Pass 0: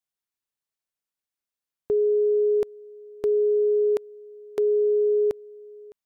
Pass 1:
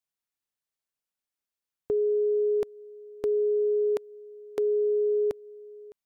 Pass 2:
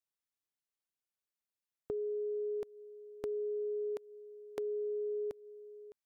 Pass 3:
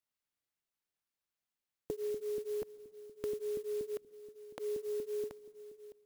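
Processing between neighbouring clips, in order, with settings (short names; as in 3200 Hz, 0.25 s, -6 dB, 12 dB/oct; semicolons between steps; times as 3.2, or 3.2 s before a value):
dynamic EQ 380 Hz, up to -4 dB, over -34 dBFS, Q 4.5; gain -1.5 dB
compressor 3:1, threshold -31 dBFS, peak gain reduction 6 dB; gain -6 dB
LFO notch saw up 4.2 Hz 260–1500 Hz; on a send at -21.5 dB: reverb RT60 2.0 s, pre-delay 0.116 s; on the sum: clock jitter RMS 0.039 ms; gain +1.5 dB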